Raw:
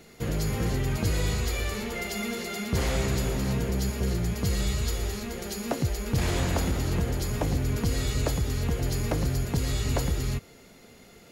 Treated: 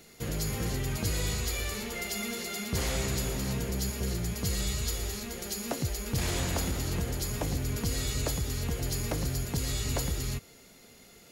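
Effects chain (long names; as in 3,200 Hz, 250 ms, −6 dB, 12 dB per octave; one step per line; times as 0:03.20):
high-shelf EQ 3,400 Hz +8.5 dB
level −5 dB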